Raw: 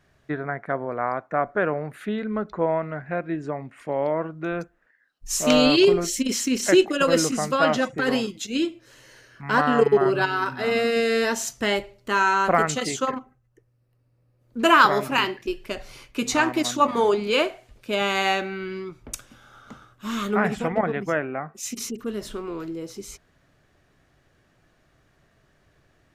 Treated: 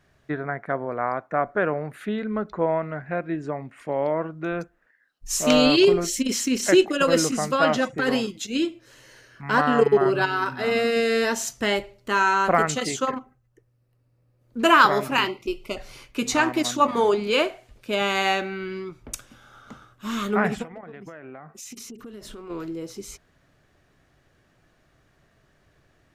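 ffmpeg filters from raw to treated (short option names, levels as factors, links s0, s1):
-filter_complex "[0:a]asettb=1/sr,asplit=3[s0][s1][s2];[s0]atrim=end=15.284[s3];[s1]atrim=start=15.28:end=15.77,asetpts=PTS-STARTPTS,afade=t=in:d=0.004:c=qsin,afade=t=out:st=0.486:d=0.004:c=qsin,asuperstop=centerf=1700:order=12:qfactor=3.2[s4];[s2]atrim=start=15.766[s5];[s3][s4]acrossfade=d=0.004:c1=hsin:c2=qsin[s6];[s6][s5]acrossfade=d=0.004:c1=qsin:c2=hsin,asplit=3[s7][s8][s9];[s7]afade=t=out:st=20.62:d=0.02[s10];[s8]acompressor=threshold=0.0158:ratio=12:attack=3.2:release=140:knee=1:detection=peak,afade=t=in:st=20.62:d=0.02,afade=t=out:st=22.49:d=0.02[s11];[s9]afade=t=in:st=22.49:d=0.02[s12];[s10][s11][s12]amix=inputs=3:normalize=0"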